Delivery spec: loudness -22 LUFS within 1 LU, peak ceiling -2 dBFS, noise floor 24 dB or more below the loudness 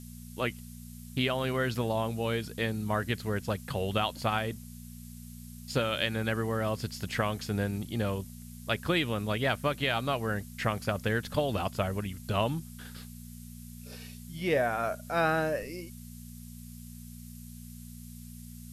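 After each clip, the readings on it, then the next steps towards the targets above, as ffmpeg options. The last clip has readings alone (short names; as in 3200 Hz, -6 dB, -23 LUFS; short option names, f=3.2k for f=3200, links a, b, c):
hum 60 Hz; harmonics up to 240 Hz; hum level -43 dBFS; noise floor -46 dBFS; noise floor target -55 dBFS; loudness -31.0 LUFS; peak -13.5 dBFS; loudness target -22.0 LUFS
-> -af "bandreject=f=60:t=h:w=4,bandreject=f=120:t=h:w=4,bandreject=f=180:t=h:w=4,bandreject=f=240:t=h:w=4"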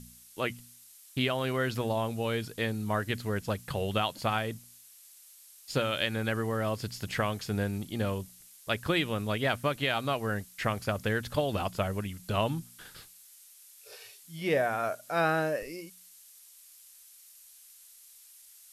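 hum none; noise floor -55 dBFS; noise floor target -56 dBFS
-> -af "afftdn=nr=6:nf=-55"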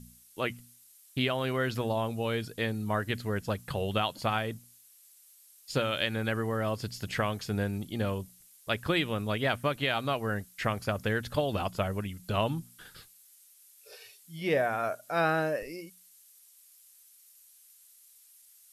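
noise floor -59 dBFS; loudness -31.5 LUFS; peak -13.5 dBFS; loudness target -22.0 LUFS
-> -af "volume=9.5dB"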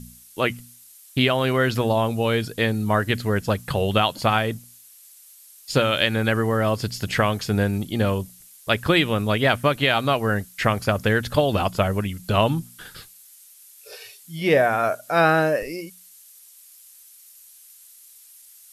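loudness -22.0 LUFS; peak -4.0 dBFS; noise floor -49 dBFS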